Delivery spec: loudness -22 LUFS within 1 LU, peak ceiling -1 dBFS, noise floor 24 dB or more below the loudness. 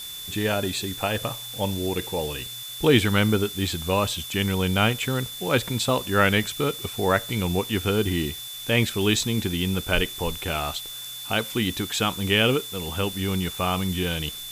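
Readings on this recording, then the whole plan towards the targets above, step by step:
steady tone 3500 Hz; tone level -36 dBFS; noise floor -37 dBFS; noise floor target -49 dBFS; loudness -24.5 LUFS; peak -5.0 dBFS; loudness target -22.0 LUFS
-> notch 3500 Hz, Q 30; denoiser 12 dB, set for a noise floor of -37 dBFS; gain +2.5 dB

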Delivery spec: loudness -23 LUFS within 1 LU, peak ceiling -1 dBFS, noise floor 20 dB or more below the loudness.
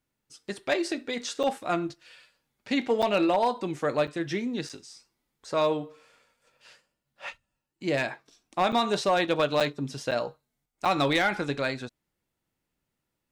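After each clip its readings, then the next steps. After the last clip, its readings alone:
clipped 0.3%; flat tops at -16.5 dBFS; dropouts 8; longest dropout 6.5 ms; loudness -28.0 LUFS; peak -16.5 dBFS; loudness target -23.0 LUFS
-> clip repair -16.5 dBFS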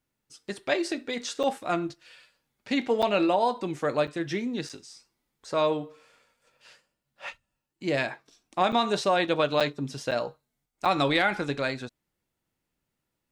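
clipped 0.0%; dropouts 8; longest dropout 6.5 ms
-> interpolate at 1.43/3.02/4.07/4.69/8.72/9.6/10.11/10.85, 6.5 ms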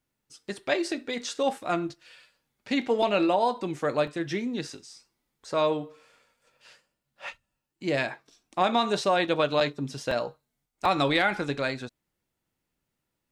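dropouts 0; loudness -27.5 LUFS; peak -11.0 dBFS; loudness target -23.0 LUFS
-> gain +4.5 dB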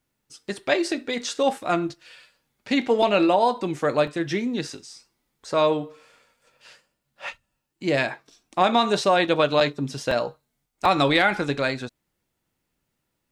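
loudness -23.0 LUFS; peak -6.5 dBFS; noise floor -78 dBFS

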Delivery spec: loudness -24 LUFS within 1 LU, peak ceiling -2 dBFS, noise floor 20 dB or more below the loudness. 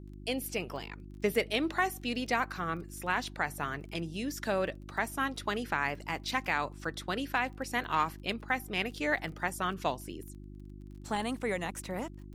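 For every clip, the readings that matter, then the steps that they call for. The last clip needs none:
ticks 22/s; hum 50 Hz; harmonics up to 350 Hz; hum level -44 dBFS; loudness -33.5 LUFS; peak -15.5 dBFS; loudness target -24.0 LUFS
-> de-click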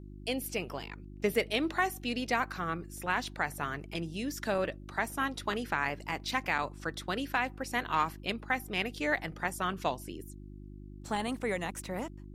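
ticks 0/s; hum 50 Hz; harmonics up to 350 Hz; hum level -44 dBFS
-> de-hum 50 Hz, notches 7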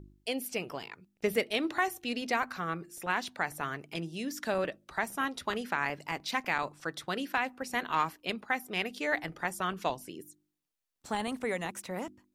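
hum none; loudness -33.5 LUFS; peak -15.0 dBFS; loudness target -24.0 LUFS
-> gain +9.5 dB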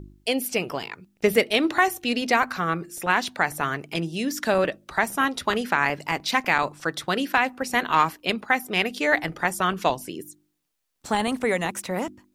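loudness -24.0 LUFS; peak -5.5 dBFS; noise floor -69 dBFS

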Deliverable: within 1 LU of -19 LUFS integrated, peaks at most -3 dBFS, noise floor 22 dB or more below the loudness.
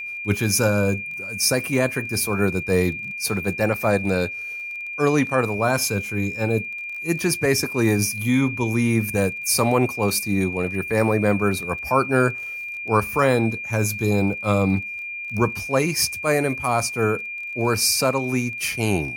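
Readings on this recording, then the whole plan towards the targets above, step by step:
ticks 18/s; steady tone 2400 Hz; tone level -29 dBFS; loudness -22.0 LUFS; peak -4.5 dBFS; loudness target -19.0 LUFS
-> de-click; notch 2400 Hz, Q 30; gain +3 dB; limiter -3 dBFS

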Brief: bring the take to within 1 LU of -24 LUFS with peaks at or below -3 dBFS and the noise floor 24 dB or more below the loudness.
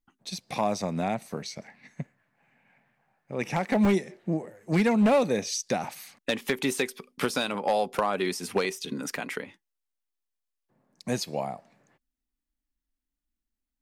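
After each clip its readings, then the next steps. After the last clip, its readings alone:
clipped 0.6%; flat tops at -16.5 dBFS; dropouts 4; longest dropout 1.8 ms; loudness -28.5 LUFS; peak -16.5 dBFS; loudness target -24.0 LUFS
-> clip repair -16.5 dBFS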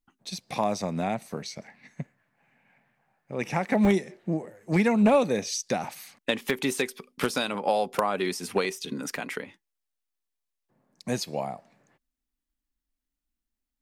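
clipped 0.0%; dropouts 4; longest dropout 1.8 ms
-> interpolate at 3.85/8.65/9.16/11.23, 1.8 ms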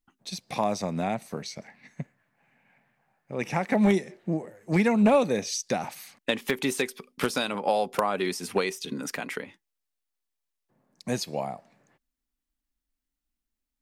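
dropouts 0; loudness -28.0 LUFS; peak -7.5 dBFS; loudness target -24.0 LUFS
-> gain +4 dB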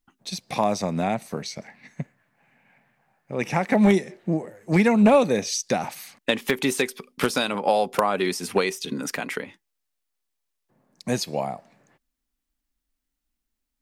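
loudness -24.0 LUFS; peak -3.5 dBFS; noise floor -81 dBFS

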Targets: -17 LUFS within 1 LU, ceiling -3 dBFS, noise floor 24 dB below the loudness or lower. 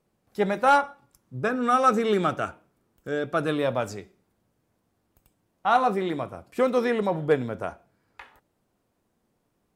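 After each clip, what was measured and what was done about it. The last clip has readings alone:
loudness -25.0 LUFS; peak -10.0 dBFS; loudness target -17.0 LUFS
-> gain +8 dB; limiter -3 dBFS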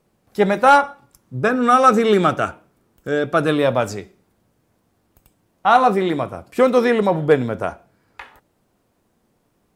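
loudness -17.5 LUFS; peak -3.0 dBFS; noise floor -66 dBFS

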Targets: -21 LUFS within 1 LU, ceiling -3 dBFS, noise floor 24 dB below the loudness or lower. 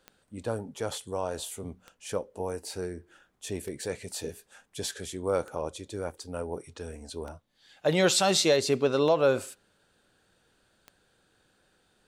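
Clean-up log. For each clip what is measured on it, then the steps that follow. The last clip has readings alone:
clicks 7; loudness -29.5 LUFS; peak -12.5 dBFS; loudness target -21.0 LUFS
-> de-click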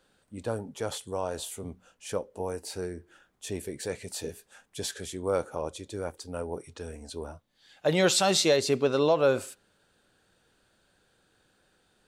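clicks 0; loudness -29.5 LUFS; peak -12.5 dBFS; loudness target -21.0 LUFS
-> gain +8.5 dB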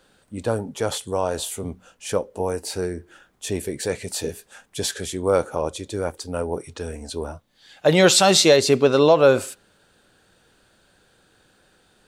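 loudness -21.0 LUFS; peak -4.0 dBFS; noise floor -61 dBFS

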